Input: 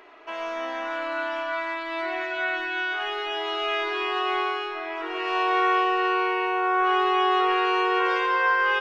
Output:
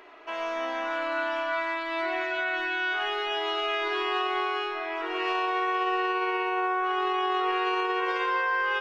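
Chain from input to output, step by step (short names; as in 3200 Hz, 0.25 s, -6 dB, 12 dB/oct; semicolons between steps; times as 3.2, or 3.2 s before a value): de-hum 107.8 Hz, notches 23; limiter -19 dBFS, peak gain reduction 7 dB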